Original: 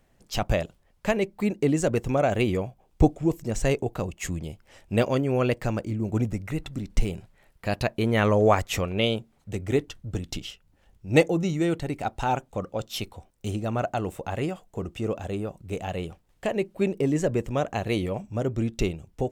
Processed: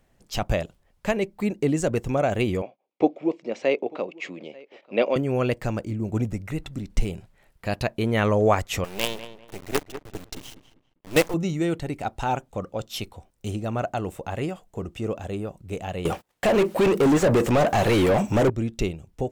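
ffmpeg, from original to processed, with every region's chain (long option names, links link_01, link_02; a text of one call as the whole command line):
ffmpeg -i in.wav -filter_complex "[0:a]asettb=1/sr,asplit=3[link_01][link_02][link_03];[link_01]atrim=end=2.624[link_04];[link_02]atrim=start=2.62:end=5.16,asetpts=PTS-STARTPTS,afade=type=in:duration=0.004:curve=qsin,afade=type=out:start_time=2.536:duration=0.004:curve=qsin,agate=range=-15dB:threshold=-54dB:ratio=16:release=100:detection=peak,highpass=frequency=250:width=0.5412,highpass=frequency=250:width=1.3066,equalizer=frequency=550:width_type=q:width=4:gain=6,equalizer=frequency=1600:width_type=q:width=4:gain=-5,equalizer=frequency=2300:width_type=q:width=4:gain=7,lowpass=frequency=4300:width=0.5412,lowpass=frequency=4300:width=1.3066,aecho=1:1:893:0.0668,atrim=end_sample=112014[link_05];[link_03]atrim=start=5.156[link_06];[link_04][link_05]acrossfade=duration=0.004:curve1=hsin:curve2=qsin[link_07];[link_07][link_06]acrossfade=duration=0.004:curve1=qsin:curve2=hsin,asettb=1/sr,asplit=3[link_08][link_09][link_10];[link_08]atrim=end=8.844[link_11];[link_09]atrim=start=8.84:end=11.34,asetpts=PTS-STARTPTS,afade=type=in:duration=0.004:curve=qsin,afade=type=out:start_time=2.496:duration=0.004:curve=qsin,equalizer=frequency=110:width=0.57:gain=-7.5,acrusher=bits=4:dc=4:mix=0:aa=0.000001,asplit=2[link_12][link_13];[link_13]adelay=197,lowpass=frequency=2200:poles=1,volume=-11dB,asplit=2[link_14][link_15];[link_15]adelay=197,lowpass=frequency=2200:poles=1,volume=0.29,asplit=2[link_16][link_17];[link_17]adelay=197,lowpass=frequency=2200:poles=1,volume=0.29[link_18];[link_12][link_14][link_16][link_18]amix=inputs=4:normalize=0,atrim=end_sample=110250[link_19];[link_10]atrim=start=11.336[link_20];[link_11][link_19]acrossfade=duration=0.004:curve1=hsin:curve2=qsin[link_21];[link_21][link_20]acrossfade=duration=0.004:curve1=qsin:curve2=hsin,asettb=1/sr,asplit=3[link_22][link_23][link_24];[link_22]atrim=end=16.054[link_25];[link_23]atrim=start=16.05:end=18.5,asetpts=PTS-STARTPTS,afade=type=in:duration=0.004:curve=qsin,afade=type=out:start_time=2.446:duration=0.004:curve=qsin,aemphasis=mode=production:type=75kf,asplit=2[link_26][link_27];[link_27]highpass=frequency=720:poles=1,volume=35dB,asoftclip=type=tanh:threshold=-10.5dB[link_28];[link_26][link_28]amix=inputs=2:normalize=0,lowpass=frequency=1100:poles=1,volume=-6dB,agate=range=-26dB:threshold=-45dB:ratio=16:release=100:detection=peak[link_29];[link_24]atrim=start=18.496[link_30];[link_25][link_29]acrossfade=duration=0.004:curve1=hsin:curve2=qsin[link_31];[link_31][link_30]acrossfade=duration=0.004:curve1=qsin:curve2=hsin" out.wav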